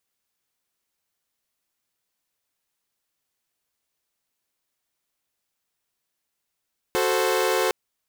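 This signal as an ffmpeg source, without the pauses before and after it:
-f lavfi -i "aevalsrc='0.0794*((2*mod(369.99*t,1)-1)+(2*mod(440*t,1)-1)+(2*mod(523.25*t,1)-1))':d=0.76:s=44100"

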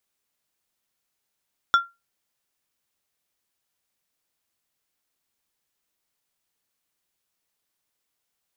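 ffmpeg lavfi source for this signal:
-f lavfi -i "aevalsrc='0.316*pow(10,-3*t/0.22)*sin(2*PI*1380*t)+0.1*pow(10,-3*t/0.116)*sin(2*PI*3450*t)+0.0316*pow(10,-3*t/0.083)*sin(2*PI*5520*t)+0.01*pow(10,-3*t/0.071)*sin(2*PI*6900*t)+0.00316*pow(10,-3*t/0.059)*sin(2*PI*8970*t)':d=0.89:s=44100"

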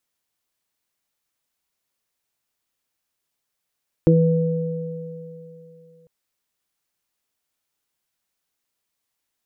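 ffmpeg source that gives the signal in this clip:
-f lavfi -i "aevalsrc='0.251*pow(10,-3*t/2.77)*sin(2*PI*164*t)+0.282*pow(10,-3*t/0.22)*sin(2*PI*328*t)+0.158*pow(10,-3*t/3.33)*sin(2*PI*492*t)':d=2:s=44100"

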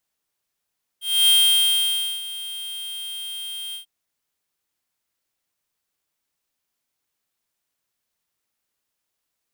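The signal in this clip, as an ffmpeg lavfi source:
-f lavfi -i "aevalsrc='0.188*(2*lt(mod(3190*t,1),0.5)-1)':d=2.843:s=44100,afade=t=in:d=0.269,afade=t=out:st=0.269:d=0.93:silence=0.133,afade=t=out:st=2.73:d=0.113"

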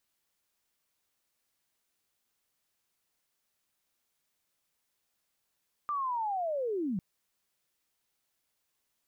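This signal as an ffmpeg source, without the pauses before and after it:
-f lavfi -i "aevalsrc='0.0335*sin(2*PI*(1200*t-1030*t*t/(2*1.1)))':d=1.1:s=44100"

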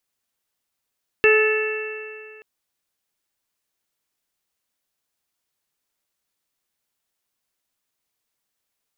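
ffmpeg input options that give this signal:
-f lavfi -i "aevalsrc='0.224*pow(10,-3*t/2.21)*sin(2*PI*430.39*t)+0.0224*pow(10,-3*t/2.21)*sin(2*PI*863.09*t)+0.0501*pow(10,-3*t/2.21)*sin(2*PI*1300.41*t)+0.126*pow(10,-3*t/2.21)*sin(2*PI*1744.59*t)+0.0501*pow(10,-3*t/2.21)*sin(2*PI*2197.84*t)+0.168*pow(10,-3*t/2.21)*sin(2*PI*2662.28*t)':d=1.18:s=44100"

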